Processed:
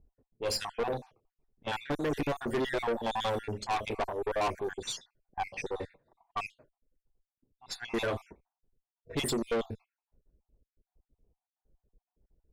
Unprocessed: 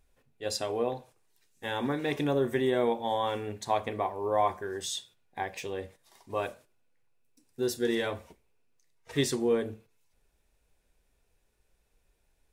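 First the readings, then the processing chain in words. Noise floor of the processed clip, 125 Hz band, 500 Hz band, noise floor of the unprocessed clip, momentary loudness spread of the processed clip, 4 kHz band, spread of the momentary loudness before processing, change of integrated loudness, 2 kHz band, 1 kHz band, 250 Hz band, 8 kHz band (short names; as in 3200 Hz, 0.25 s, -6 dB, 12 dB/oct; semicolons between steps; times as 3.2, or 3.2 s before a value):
under -85 dBFS, -2.5 dB, -4.0 dB, -72 dBFS, 10 LU, -0.5 dB, 12 LU, -3.0 dB, 0.0 dB, -2.5 dB, -4.0 dB, -2.5 dB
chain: random spectral dropouts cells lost 56%; tube stage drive 34 dB, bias 0.5; low-pass opened by the level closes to 350 Hz, open at -38 dBFS; gain +7.5 dB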